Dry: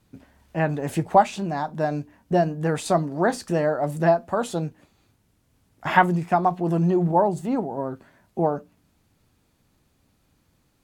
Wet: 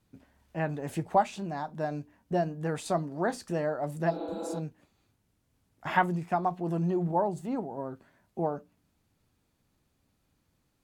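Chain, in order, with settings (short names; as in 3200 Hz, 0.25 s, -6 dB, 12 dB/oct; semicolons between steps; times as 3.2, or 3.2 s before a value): spectral repair 4.13–4.55, 220–4500 Hz after; gain -8 dB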